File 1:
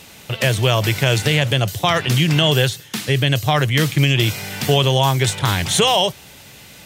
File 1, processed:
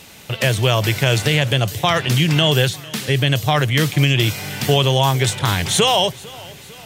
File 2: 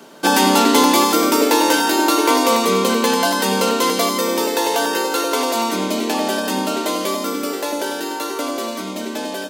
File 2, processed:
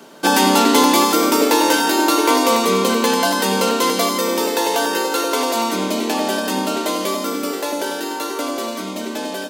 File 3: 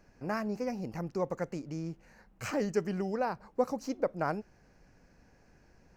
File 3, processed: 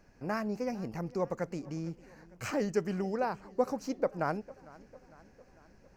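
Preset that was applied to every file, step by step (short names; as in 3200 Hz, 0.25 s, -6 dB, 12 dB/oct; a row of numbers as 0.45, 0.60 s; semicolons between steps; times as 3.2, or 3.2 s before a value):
warbling echo 0.452 s, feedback 58%, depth 74 cents, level -21.5 dB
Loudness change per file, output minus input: 0.0, 0.0, 0.0 LU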